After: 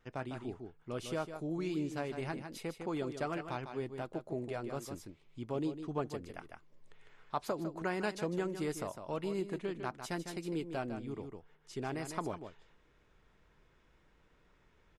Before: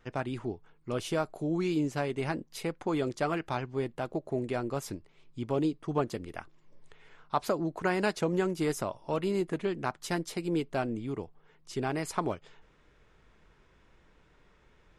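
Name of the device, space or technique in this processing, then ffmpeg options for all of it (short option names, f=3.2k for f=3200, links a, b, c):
ducked delay: -filter_complex "[0:a]asplit=3[a][b][c];[b]adelay=153,volume=-3dB[d];[c]apad=whole_len=667426[e];[d][e]sidechaincompress=threshold=-34dB:ratio=5:attack=38:release=713[f];[a][f]amix=inputs=2:normalize=0,volume=-7dB"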